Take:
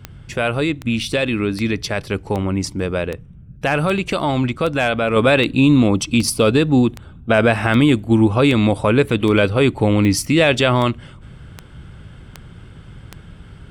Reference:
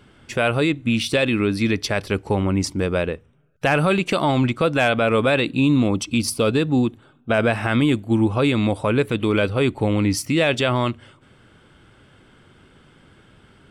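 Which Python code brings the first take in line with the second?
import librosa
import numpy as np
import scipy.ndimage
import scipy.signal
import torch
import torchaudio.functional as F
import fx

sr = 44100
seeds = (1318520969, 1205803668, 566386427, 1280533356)

y = fx.fix_declick_ar(x, sr, threshold=10.0)
y = fx.noise_reduce(y, sr, print_start_s=3.14, print_end_s=3.64, reduce_db=12.0)
y = fx.gain(y, sr, db=fx.steps((0.0, 0.0), (5.16, -4.5)))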